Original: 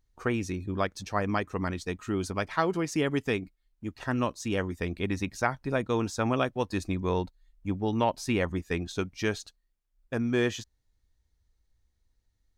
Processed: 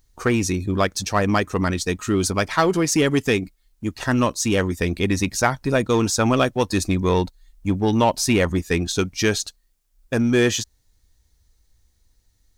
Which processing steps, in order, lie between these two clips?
bass and treble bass 0 dB, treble +8 dB
in parallel at −3 dB: hard clipping −26.5 dBFS, distortion −8 dB
on the sum: level +5.5 dB

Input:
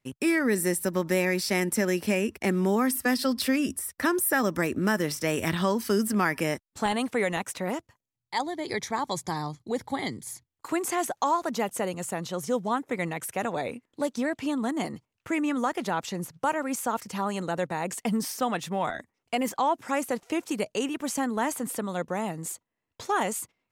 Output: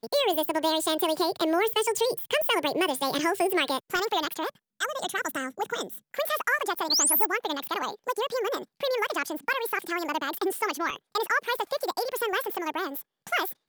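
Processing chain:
sound drawn into the spectrogram rise, 0:11.96–0:12.58, 2,300–12,000 Hz −23 dBFS
wrong playback speed 45 rpm record played at 78 rpm

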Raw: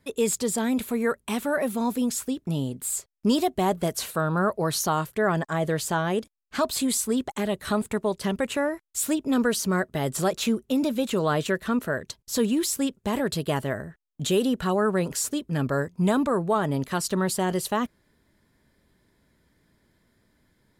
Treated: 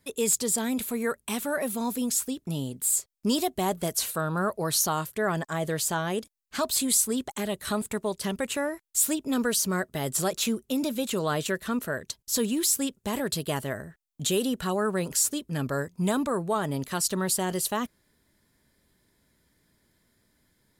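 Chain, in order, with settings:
high-shelf EQ 4,100 Hz +10 dB
level −4 dB

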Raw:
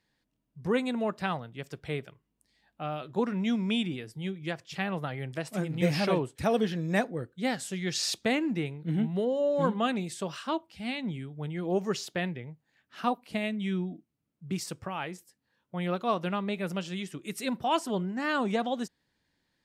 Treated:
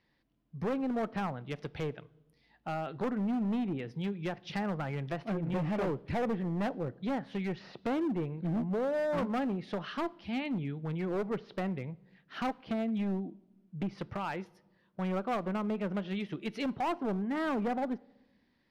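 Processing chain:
treble cut that deepens with the level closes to 1,200 Hz, closed at −27.5 dBFS
in parallel at +0.5 dB: downward compressor 12 to 1, threshold −36 dBFS, peak gain reduction 16.5 dB
on the sum: moving average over 6 samples
hard clipping −25.5 dBFS, distortion −11 dB
speed change +5%
on a send at −20.5 dB: convolution reverb RT60 1.1 s, pre-delay 3 ms
on the sum: level −3 dB

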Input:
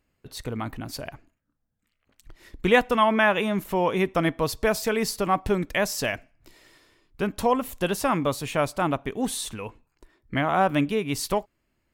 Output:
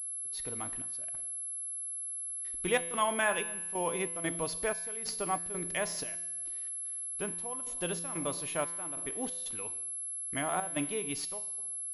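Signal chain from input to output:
bit-depth reduction 10 bits, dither none
bass and treble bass −6 dB, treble +8 dB
convolution reverb RT60 0.90 s, pre-delay 3 ms, DRR 13 dB
gate pattern "x.xxx..x" 92 BPM −12 dB
tuned comb filter 170 Hz, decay 1.1 s, mix 70%
switching amplifier with a slow clock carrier 11,000 Hz

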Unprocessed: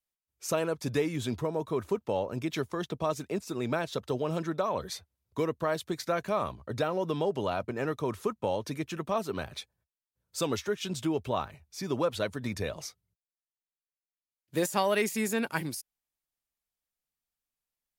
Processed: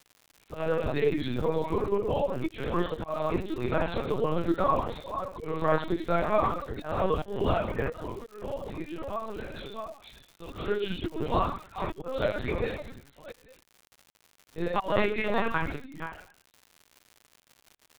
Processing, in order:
delay that plays each chunk backwards 351 ms, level −8 dB
reverb whose tail is shaped and stops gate 310 ms falling, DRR −3.5 dB
0:07.88–0:10.52: downward compressor 3 to 1, threshold −33 dBFS, peak gain reduction 10 dB
dynamic equaliser 1,100 Hz, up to +4 dB, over −41 dBFS, Q 4.1
volume swells 224 ms
reverb reduction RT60 0.74 s
linear-prediction vocoder at 8 kHz pitch kept
surface crackle 140 per second −41 dBFS

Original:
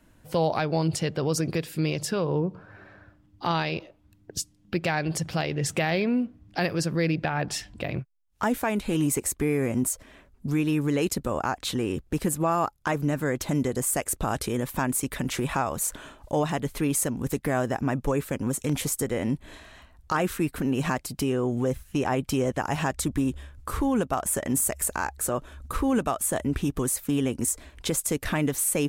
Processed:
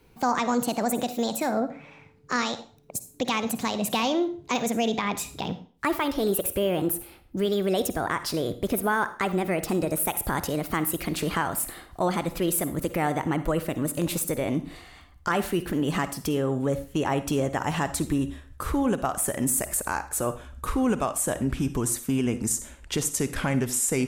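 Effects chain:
gliding playback speed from 152% → 88%
on a send: convolution reverb RT60 0.45 s, pre-delay 43 ms, DRR 12 dB

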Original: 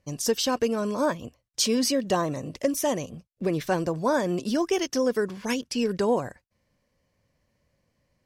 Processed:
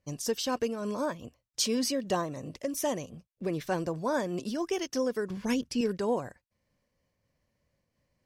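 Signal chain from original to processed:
0:05.30–0:05.81: low-shelf EQ 270 Hz +11 dB
amplitude modulation by smooth noise, depth 55%
level −2.5 dB

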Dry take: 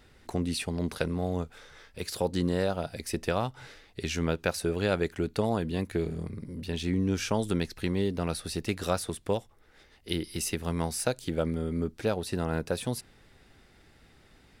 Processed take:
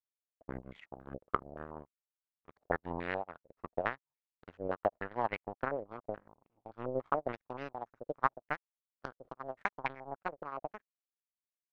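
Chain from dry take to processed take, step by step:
gliding playback speed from 69% → 180%
power curve on the samples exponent 3
low-pass on a step sequencer 7 Hz 540–2,200 Hz
level +1 dB

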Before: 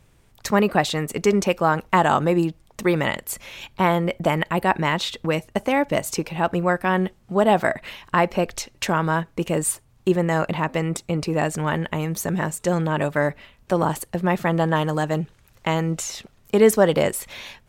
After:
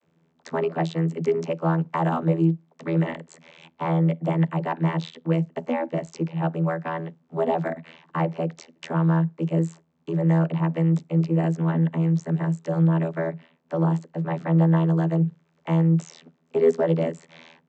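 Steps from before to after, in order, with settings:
soft clipping −5.5 dBFS, distortion −23 dB
channel vocoder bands 32, saw 82 Hz

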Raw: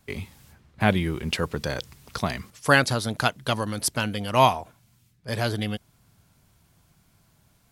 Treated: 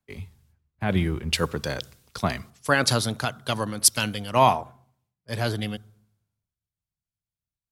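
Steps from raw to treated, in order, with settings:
brickwall limiter −12 dBFS, peak gain reduction 9 dB
on a send at −22.5 dB: convolution reverb RT60 1.1 s, pre-delay 47 ms
on the sum: multiband upward and downward expander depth 100%

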